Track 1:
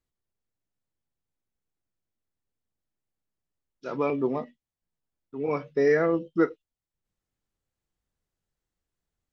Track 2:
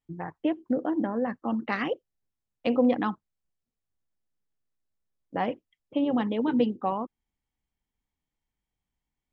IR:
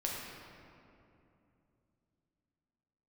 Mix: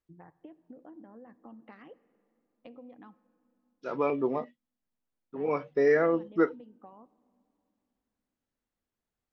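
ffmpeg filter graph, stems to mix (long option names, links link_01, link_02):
-filter_complex "[0:a]lowshelf=frequency=270:gain=-9.5,volume=1.5dB[link_01];[1:a]acompressor=threshold=-32dB:ratio=10,volume=-15dB,asplit=2[link_02][link_03];[link_03]volume=-19.5dB[link_04];[2:a]atrim=start_sample=2205[link_05];[link_04][link_05]afir=irnorm=-1:irlink=0[link_06];[link_01][link_02][link_06]amix=inputs=3:normalize=0,highshelf=frequency=2900:gain=-9.5"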